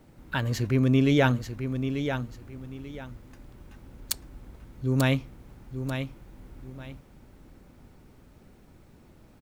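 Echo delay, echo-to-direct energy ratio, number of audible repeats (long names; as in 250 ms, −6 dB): 889 ms, −7.5 dB, 2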